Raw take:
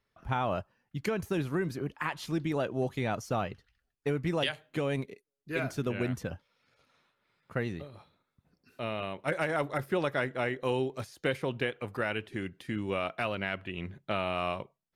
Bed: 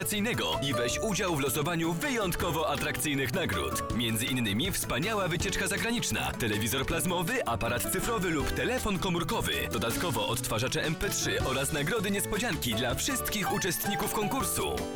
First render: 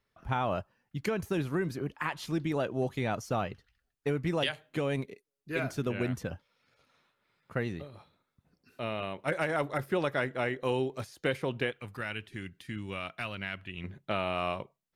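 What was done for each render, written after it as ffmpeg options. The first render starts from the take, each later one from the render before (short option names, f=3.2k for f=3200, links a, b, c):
-filter_complex "[0:a]asettb=1/sr,asplit=3[a][b][c];[a]atrim=end=11.724[d];[b]atrim=start=11.72:end=13.84,asetpts=PTS-STARTPTS,afade=t=in:d=0.004:c=qsin,afade=t=out:st=2.116:d=0.004:c=qsin,equalizer=f=520:w=0.54:g=-10[e];[c]atrim=start=13.836[f];[d][e]acrossfade=d=0.004:c1=hsin:c2=qsin[g];[g][f]acrossfade=d=0.004:c1=qsin:c2=hsin"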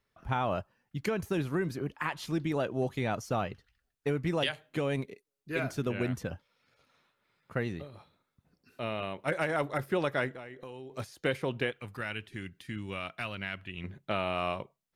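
-filter_complex "[0:a]asettb=1/sr,asplit=3[a][b][c];[a]atrim=end=10.314[d];[b]atrim=start=10.31:end=10.91,asetpts=PTS-STARTPTS,afade=t=in:d=0.004:c=qsin,afade=t=out:st=0.596:d=0.004:c=qsin,acompressor=threshold=-41dB:ratio=8:attack=3.2:release=140:knee=1:detection=peak[e];[c]atrim=start=10.906[f];[d][e]acrossfade=d=0.004:c1=hsin:c2=qsin[g];[g][f]acrossfade=d=0.004:c1=qsin:c2=hsin"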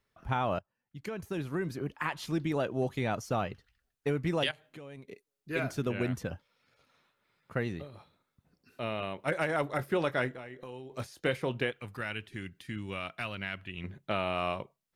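-filter_complex "[0:a]asettb=1/sr,asplit=3[a][b][c];[a]atrim=end=4.514[d];[b]atrim=start=4.51:end=5.08,asetpts=PTS-STARTPTS,afade=t=in:d=0.004:c=qsin,afade=t=out:st=0.566:d=0.004:c=qsin,acompressor=threshold=-56dB:ratio=2:attack=3.2:release=140:knee=1:detection=peak[e];[c]atrim=start=5.076[f];[d][e]acrossfade=d=0.004:c1=hsin:c2=qsin[g];[g][f]acrossfade=d=0.004:c1=qsin:c2=hsin,asettb=1/sr,asplit=3[h][i][j];[h]atrim=end=9.714[k];[i]atrim=start=9.71:end=11.62,asetpts=PTS-STARTPTS,afade=t=in:d=0.004:c=qsin,afade=t=out:st=1.906:d=0.004:c=qsin,asplit=2[l][m];[m]adelay=24,volume=-13.5dB[n];[l][n]amix=inputs=2:normalize=0,atrim=end_sample=84231[o];[j]atrim=start=11.616[p];[k][o]acrossfade=d=0.004:c1=hsin:c2=qsin[q];[q][p]acrossfade=d=0.004:c1=qsin:c2=hsin,asplit=2[r][s];[r]atrim=end=0.59,asetpts=PTS-STARTPTS,afade=t=out:st=0.586:d=0.004:c=hsin:silence=0.105925[t];[s]atrim=start=0.59,asetpts=PTS-STARTPTS,afade=t=in:d=1.38:silence=0.105925[u];[t][u]concat=n=2:v=0:a=1"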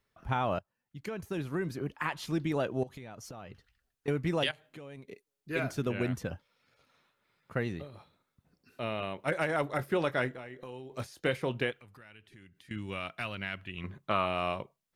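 -filter_complex "[0:a]asettb=1/sr,asplit=3[a][b][c];[a]atrim=end=2.834[d];[b]atrim=start=2.83:end=4.08,asetpts=PTS-STARTPTS,afade=t=in:d=0.004:c=qsin,afade=t=out:st=1.246:d=0.004:c=qsin,acompressor=threshold=-41dB:ratio=16:attack=3.2:release=140:knee=1:detection=peak[e];[c]atrim=start=4.076[f];[d][e]acrossfade=d=0.004:c1=hsin:c2=qsin[g];[g][f]acrossfade=d=0.004:c1=qsin:c2=hsin,asettb=1/sr,asplit=3[h][i][j];[h]atrim=end=11.774[k];[i]atrim=start=11.77:end=12.71,asetpts=PTS-STARTPTS,afade=t=in:d=0.004:c=qsin,afade=t=out:st=0.936:d=0.004:c=qsin,acompressor=threshold=-56dB:ratio=3:attack=3.2:release=140:knee=1:detection=peak[l];[j]atrim=start=12.706[m];[k][l]acrossfade=d=0.004:c1=hsin:c2=qsin[n];[n][m]acrossfade=d=0.004:c1=qsin:c2=hsin,asettb=1/sr,asplit=3[o][p][q];[o]atrim=end=13.784[r];[p]atrim=start=13.78:end=14.26,asetpts=PTS-STARTPTS,afade=t=in:d=0.004:c=qsin,afade=t=out:st=0.476:d=0.004:c=qsin,equalizer=f=1.1k:t=o:w=0.31:g=13[s];[q]atrim=start=14.256[t];[r][s]acrossfade=d=0.004:c1=hsin:c2=qsin[u];[u][t]acrossfade=d=0.004:c1=qsin:c2=hsin"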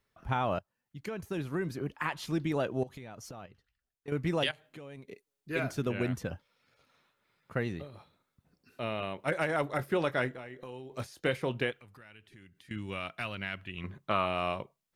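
-filter_complex "[0:a]asplit=3[a][b][c];[a]atrim=end=3.462[d];[b]atrim=start=3.458:end=4.122,asetpts=PTS-STARTPTS,volume=-9dB[e];[c]atrim=start=4.118[f];[d][e]acrossfade=d=0.004:c1=hsin:c2=hsin[g];[g][f]acrossfade=d=0.004:c1=hsin:c2=hsin"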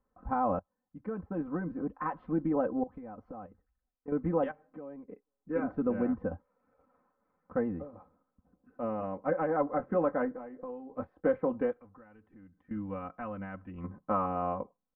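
-af "lowpass=f=1.2k:w=0.5412,lowpass=f=1.2k:w=1.3066,aecho=1:1:3.9:0.95"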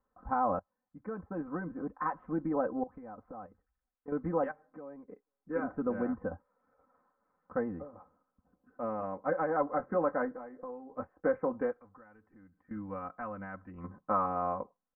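-af "lowpass=f=1.8k:w=0.5412,lowpass=f=1.8k:w=1.3066,tiltshelf=f=750:g=-4.5"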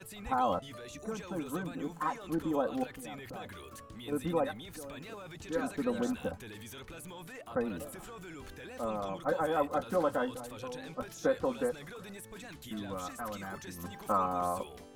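-filter_complex "[1:a]volume=-17.5dB[a];[0:a][a]amix=inputs=2:normalize=0"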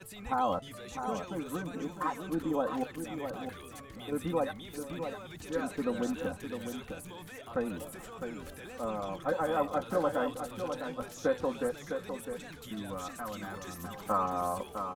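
-af "aecho=1:1:656:0.422"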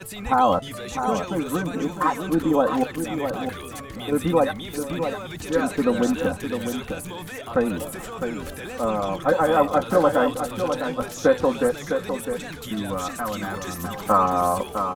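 -af "volume=11.5dB"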